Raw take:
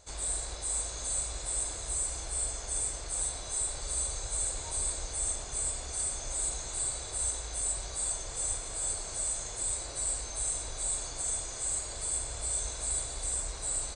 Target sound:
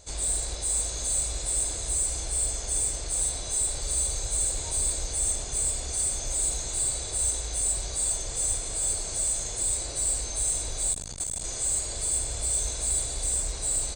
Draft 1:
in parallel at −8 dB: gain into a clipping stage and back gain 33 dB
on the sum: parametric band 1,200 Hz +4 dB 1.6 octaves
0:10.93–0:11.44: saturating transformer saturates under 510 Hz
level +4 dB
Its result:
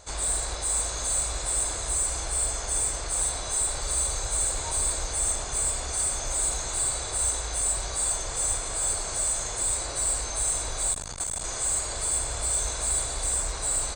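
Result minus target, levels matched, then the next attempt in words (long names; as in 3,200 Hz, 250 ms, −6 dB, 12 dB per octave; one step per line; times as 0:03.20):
1,000 Hz band +8.0 dB
in parallel at −8 dB: gain into a clipping stage and back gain 33 dB
on the sum: parametric band 1,200 Hz −7 dB 1.6 octaves
0:10.93–0:11.44: saturating transformer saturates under 510 Hz
level +4 dB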